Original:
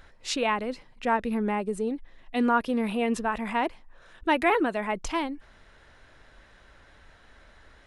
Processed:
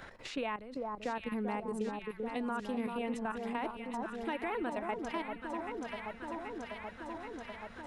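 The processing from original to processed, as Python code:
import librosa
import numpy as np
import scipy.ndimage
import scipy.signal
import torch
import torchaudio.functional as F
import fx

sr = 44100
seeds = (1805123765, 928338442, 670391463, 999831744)

p1 = fx.peak_eq(x, sr, hz=88.0, db=11.0, octaves=0.24)
p2 = fx.level_steps(p1, sr, step_db=14)
p3 = p2 + fx.echo_alternate(p2, sr, ms=390, hz=1200.0, feedback_pct=76, wet_db=-4.5, dry=0)
p4 = fx.band_squash(p3, sr, depth_pct=70)
y = p4 * 10.0 ** (-7.5 / 20.0)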